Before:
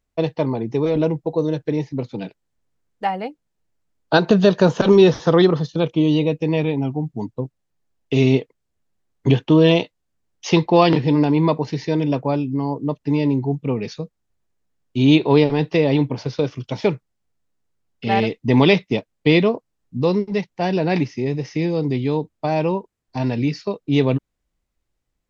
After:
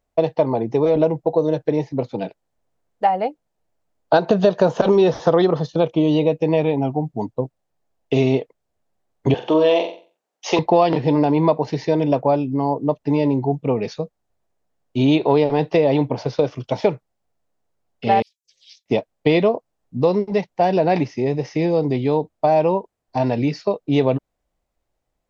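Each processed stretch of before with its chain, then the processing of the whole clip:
9.34–10.59 HPF 380 Hz + flutter echo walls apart 7.7 m, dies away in 0.37 s
18.22–18.86 inverse Chebyshev high-pass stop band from 1400 Hz, stop band 70 dB + ring modulator 270 Hz
whole clip: bell 670 Hz +11 dB 1.2 oct; compressor 3:1, threshold -12 dBFS; gain -1 dB

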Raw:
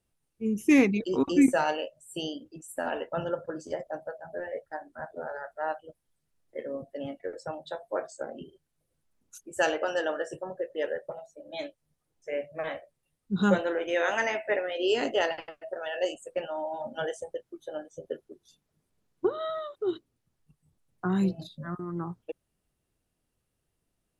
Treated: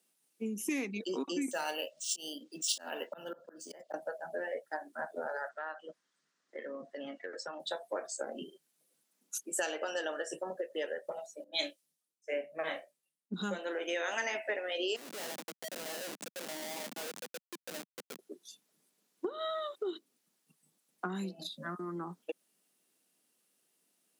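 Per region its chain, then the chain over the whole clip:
1.51–3.94 high shelf 4000 Hz +9 dB + auto swell 0.443 s + decimation joined by straight lines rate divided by 3×
5.49–7.6 LPF 6800 Hz 24 dB/oct + band shelf 1400 Hz +8 dB 1.1 oct + compressor 4:1, threshold -40 dBFS
11.44–13.34 doubler 31 ms -9.5 dB + three-band expander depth 100%
14.96–18.19 compressor 2:1, threshold -45 dBFS + Schmitt trigger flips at -43 dBFS
whole clip: compressor 6:1, threshold -34 dBFS; steep high-pass 190 Hz 36 dB/oct; high shelf 2500 Hz +11 dB

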